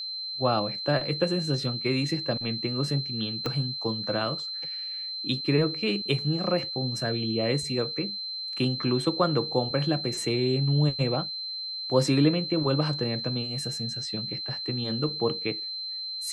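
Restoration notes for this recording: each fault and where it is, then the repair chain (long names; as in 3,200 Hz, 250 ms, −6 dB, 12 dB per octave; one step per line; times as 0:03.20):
whistle 4,100 Hz −32 dBFS
0:03.46: click −15 dBFS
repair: click removal
notch filter 4,100 Hz, Q 30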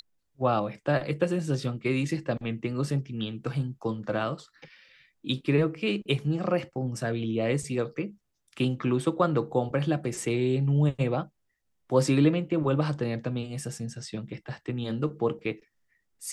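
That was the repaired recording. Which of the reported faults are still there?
0:03.46: click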